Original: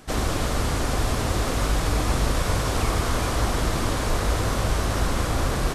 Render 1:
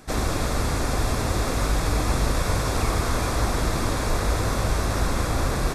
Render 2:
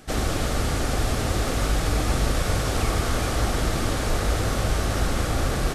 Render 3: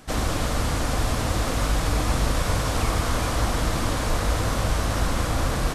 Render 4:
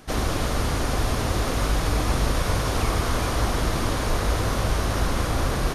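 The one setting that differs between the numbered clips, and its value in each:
band-stop, frequency: 3 kHz, 1 kHz, 390 Hz, 7.7 kHz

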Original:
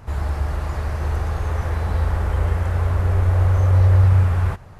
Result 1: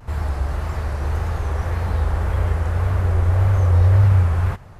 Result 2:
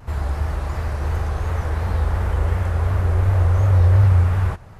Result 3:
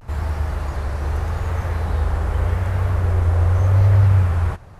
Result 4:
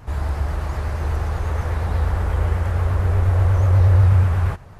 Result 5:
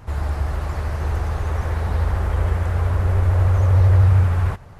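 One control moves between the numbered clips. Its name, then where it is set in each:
vibrato, rate: 1.8 Hz, 2.8 Hz, 0.83 Hz, 8.3 Hz, 13 Hz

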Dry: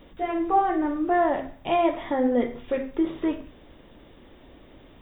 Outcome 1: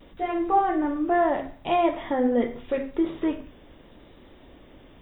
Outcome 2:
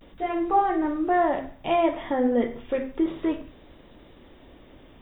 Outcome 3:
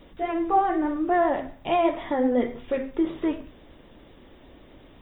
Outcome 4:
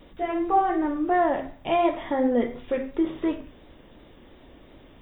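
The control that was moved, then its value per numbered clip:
vibrato, rate: 0.78 Hz, 0.33 Hz, 8.1 Hz, 2.8 Hz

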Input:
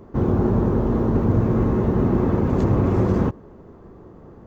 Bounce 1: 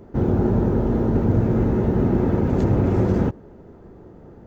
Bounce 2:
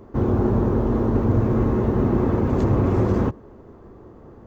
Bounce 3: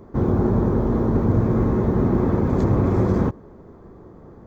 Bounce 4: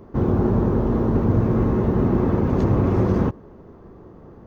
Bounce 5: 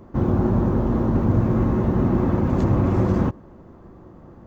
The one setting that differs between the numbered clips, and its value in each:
band-stop, frequency: 1.1 kHz, 170 Hz, 2.8 kHz, 7.3 kHz, 430 Hz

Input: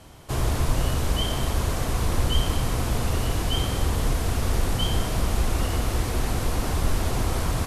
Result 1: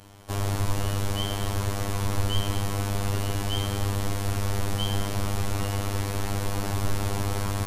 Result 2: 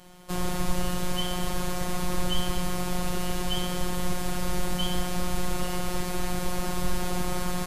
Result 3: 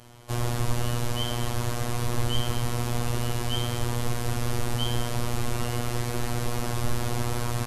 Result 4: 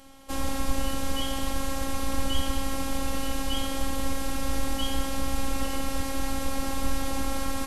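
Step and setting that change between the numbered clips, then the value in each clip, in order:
robot voice, frequency: 100 Hz, 180 Hz, 120 Hz, 270 Hz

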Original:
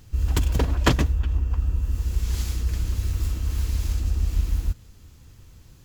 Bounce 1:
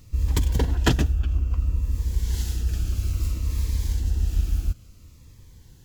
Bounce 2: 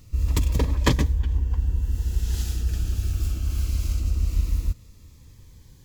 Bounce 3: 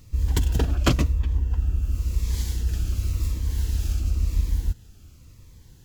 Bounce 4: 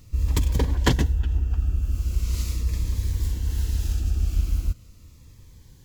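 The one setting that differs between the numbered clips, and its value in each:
Shepard-style phaser, rate: 0.59 Hz, 0.22 Hz, 0.94 Hz, 0.4 Hz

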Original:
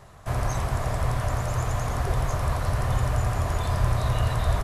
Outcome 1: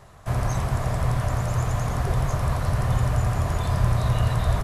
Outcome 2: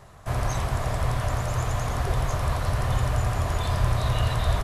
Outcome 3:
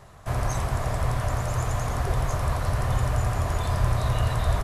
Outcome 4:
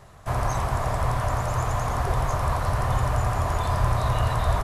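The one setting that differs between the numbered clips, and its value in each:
dynamic bell, frequency: 160 Hz, 3.4 kHz, 8.8 kHz, 960 Hz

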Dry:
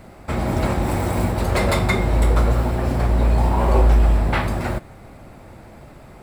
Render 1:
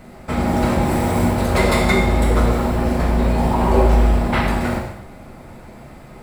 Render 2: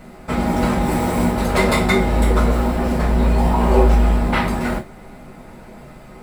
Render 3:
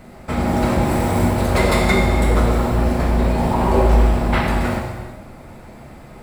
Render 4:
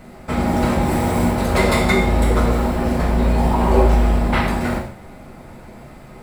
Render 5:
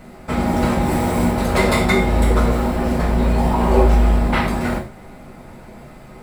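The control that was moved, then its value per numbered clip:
gated-style reverb, gate: 300 ms, 80 ms, 480 ms, 200 ms, 130 ms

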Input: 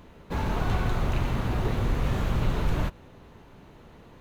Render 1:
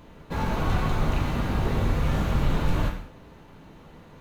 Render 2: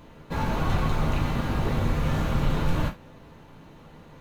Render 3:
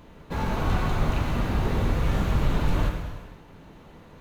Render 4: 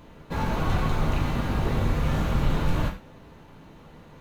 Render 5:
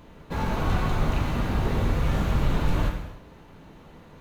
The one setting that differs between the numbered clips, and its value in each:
gated-style reverb, gate: 230 ms, 90 ms, 520 ms, 140 ms, 340 ms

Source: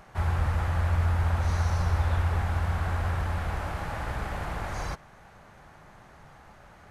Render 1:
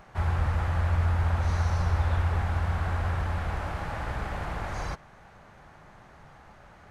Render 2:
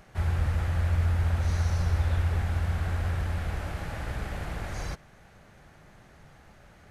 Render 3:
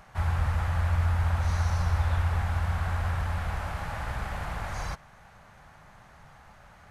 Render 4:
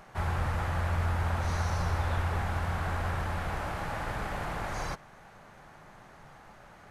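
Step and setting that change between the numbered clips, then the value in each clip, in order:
peaking EQ, frequency: 15 kHz, 990 Hz, 350 Hz, 64 Hz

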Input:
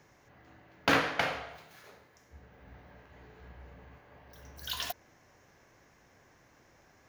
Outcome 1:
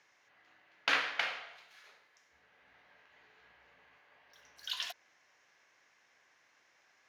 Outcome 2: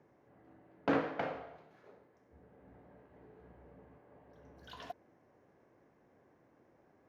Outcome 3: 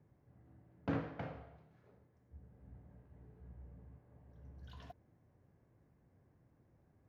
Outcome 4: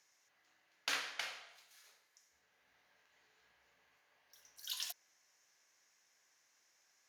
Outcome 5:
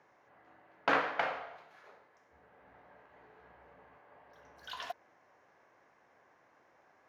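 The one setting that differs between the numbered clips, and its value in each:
band-pass filter, frequency: 2.9 kHz, 340 Hz, 110 Hz, 7.9 kHz, 910 Hz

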